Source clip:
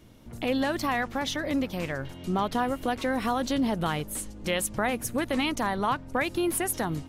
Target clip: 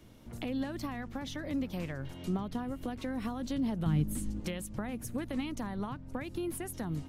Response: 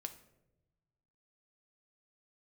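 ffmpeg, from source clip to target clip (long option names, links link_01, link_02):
-filter_complex "[0:a]acrossover=split=270[link_01][link_02];[link_02]acompressor=threshold=-37dB:ratio=10[link_03];[link_01][link_03]amix=inputs=2:normalize=0,asettb=1/sr,asplit=3[link_04][link_05][link_06];[link_04]atrim=end=3.864[link_07];[link_05]atrim=start=3.86:end=4.4,asetpts=PTS-STARTPTS,afade=type=in:duration=0.004:curve=qsin,afade=type=out:start_time=0.536:duration=0.004:curve=qsin,lowshelf=frequency=370:width_type=q:width=1.5:gain=8.5[link_08];[link_06]atrim=start=4.396[link_09];[link_07][link_08]acrossfade=duration=0.004:curve1=hsin:curve2=qsin[link_10];[link_10][link_09]acrossfade=duration=0.004:curve1=qsin:curve2=hsin,volume=-2.5dB"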